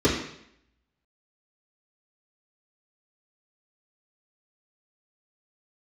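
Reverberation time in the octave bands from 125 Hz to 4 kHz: 0.70, 0.70, 0.70, 0.70, 0.75, 0.70 s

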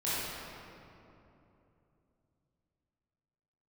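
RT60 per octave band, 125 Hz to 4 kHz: 4.2, 3.7, 3.2, 2.8, 2.1, 1.6 s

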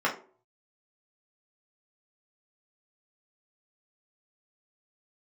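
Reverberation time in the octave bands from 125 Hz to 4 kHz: 0.65, 0.50, 0.50, 0.35, 0.30, 0.25 s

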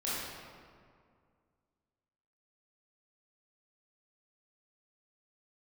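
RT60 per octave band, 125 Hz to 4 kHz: 2.4, 2.4, 2.2, 2.1, 1.6, 1.2 s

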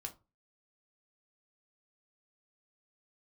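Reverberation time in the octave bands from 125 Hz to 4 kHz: 0.40, 0.35, 0.30, 0.30, 0.20, 0.20 s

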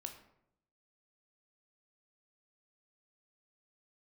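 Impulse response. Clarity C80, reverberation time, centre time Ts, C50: 12.0 dB, 0.75 s, 16 ms, 9.0 dB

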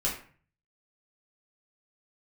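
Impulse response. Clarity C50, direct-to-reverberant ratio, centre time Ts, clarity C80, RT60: 6.5 dB, -6.0 dB, 31 ms, 10.5 dB, 0.45 s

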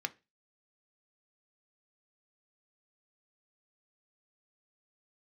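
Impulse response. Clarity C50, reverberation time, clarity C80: 22.5 dB, 0.25 s, 30.0 dB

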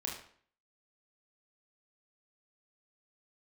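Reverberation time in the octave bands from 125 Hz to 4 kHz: 0.55, 0.55, 0.55, 0.55, 0.50, 0.45 s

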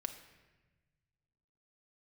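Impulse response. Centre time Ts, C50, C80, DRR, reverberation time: 15 ms, 9.5 dB, 11.5 dB, 6.0 dB, 1.2 s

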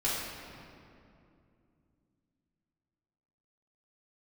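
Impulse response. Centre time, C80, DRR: 0.121 s, 1.0 dB, -9.5 dB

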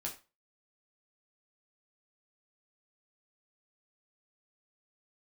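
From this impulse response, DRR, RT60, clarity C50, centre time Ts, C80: -2.0 dB, 0.30 s, 11.0 dB, 17 ms, 16.5 dB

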